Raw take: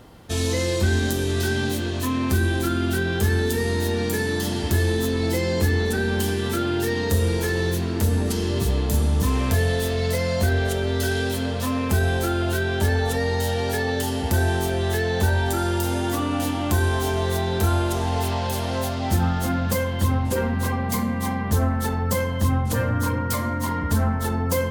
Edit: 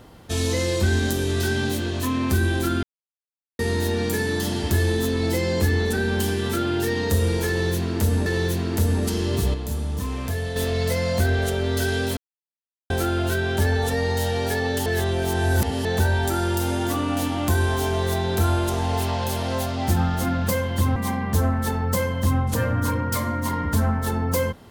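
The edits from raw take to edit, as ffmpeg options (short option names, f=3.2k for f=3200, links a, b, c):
-filter_complex "[0:a]asplit=11[a][b][c][d][e][f][g][h][i][j][k];[a]atrim=end=2.83,asetpts=PTS-STARTPTS,afade=t=out:st=2.826:d=0.004:c=hsin[l];[b]atrim=start=2.83:end=3.59,asetpts=PTS-STARTPTS,volume=0[m];[c]atrim=start=3.59:end=8.262,asetpts=PTS-STARTPTS,afade=t=in:d=0.004:c=hsin[n];[d]atrim=start=7.488:end=8.772[o];[e]atrim=start=8.768:end=9.792,asetpts=PTS-STARTPTS,volume=-6.5dB[p];[f]atrim=start=9.788:end=11.4,asetpts=PTS-STARTPTS,afade=t=out:st=1.608:d=0.004:c=hsin[q];[g]atrim=start=11.4:end=12.13,asetpts=PTS-STARTPTS,volume=0[r];[h]atrim=start=12.13:end=14.092,asetpts=PTS-STARTPTS,afade=t=in:d=0.004:c=hsin[s];[i]atrim=start=14.088:end=15.082,asetpts=PTS-STARTPTS,areverse[t];[j]atrim=start=15.078:end=20.192[u];[k]atrim=start=21.138[v];[l][m][n]concat=n=3:v=0:a=1[w];[w][o]acrossfade=d=0.004:c1=hsin:c2=hsin[x];[x][p]acrossfade=d=0.004:c1=hsin:c2=hsin[y];[q][r][s]concat=n=3:v=0:a=1[z];[y][z]acrossfade=d=0.004:c1=hsin:c2=hsin[aa];[aa][t]acrossfade=d=0.004:c1=hsin:c2=hsin[ab];[ab][u]acrossfade=d=0.004:c1=hsin:c2=hsin[ac];[ac][v]acrossfade=d=0.004:c1=hsin:c2=hsin"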